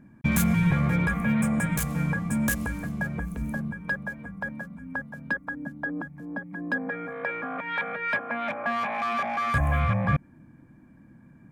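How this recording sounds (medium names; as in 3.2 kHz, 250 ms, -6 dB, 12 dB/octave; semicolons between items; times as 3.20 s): noise floor -54 dBFS; spectral tilt -4.0 dB/octave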